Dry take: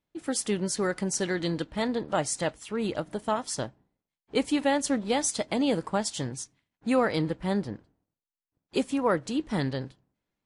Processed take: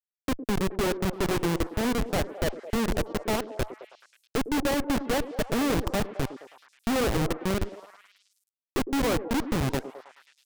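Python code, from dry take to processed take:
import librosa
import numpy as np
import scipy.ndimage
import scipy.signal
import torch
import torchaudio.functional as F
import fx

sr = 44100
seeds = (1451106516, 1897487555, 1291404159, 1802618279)

y = x + 0.5 * 10.0 ** (-34.5 / 20.0) * np.sign(x)
y = scipy.signal.sosfilt(scipy.signal.butter(2, 1600.0, 'lowpass', fs=sr, output='sos'), y)
y = fx.low_shelf(y, sr, hz=130.0, db=-9.5)
y = fx.hum_notches(y, sr, base_hz=50, count=4)
y = fx.schmitt(y, sr, flips_db=-27.5)
y = fx.echo_stepped(y, sr, ms=107, hz=350.0, octaves=0.7, feedback_pct=70, wet_db=-8)
y = y * librosa.db_to_amplitude(6.0)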